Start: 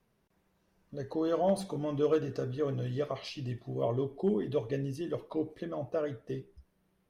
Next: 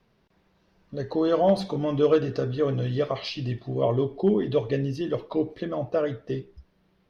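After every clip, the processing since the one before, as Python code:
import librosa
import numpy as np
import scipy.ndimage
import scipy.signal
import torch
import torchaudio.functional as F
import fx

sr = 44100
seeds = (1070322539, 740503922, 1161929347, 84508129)

y = fx.high_shelf_res(x, sr, hz=6300.0, db=-11.0, q=1.5)
y = F.gain(torch.from_numpy(y), 7.5).numpy()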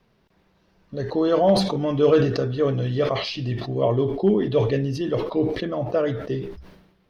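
y = fx.sustainer(x, sr, db_per_s=63.0)
y = F.gain(torch.from_numpy(y), 2.5).numpy()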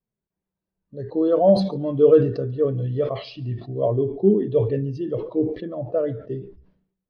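y = fx.echo_feedback(x, sr, ms=143, feedback_pct=41, wet_db=-19)
y = fx.spectral_expand(y, sr, expansion=1.5)
y = F.gain(torch.from_numpy(y), 3.0).numpy()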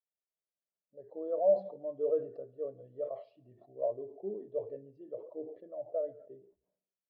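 y = fx.bandpass_q(x, sr, hz=610.0, q=4.3)
y = F.gain(torch.from_numpy(y), -8.5).numpy()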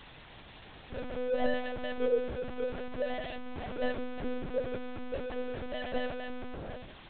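y = x + 0.5 * 10.0 ** (-33.0 / 20.0) * np.sign(x)
y = fx.lpc_monotone(y, sr, seeds[0], pitch_hz=250.0, order=8)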